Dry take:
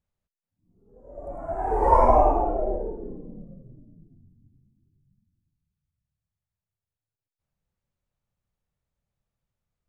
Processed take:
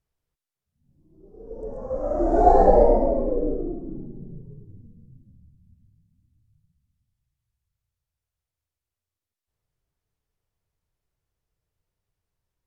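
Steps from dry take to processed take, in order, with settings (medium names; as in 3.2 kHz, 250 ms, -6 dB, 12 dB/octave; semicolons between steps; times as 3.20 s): tape speed -22%; trim +2 dB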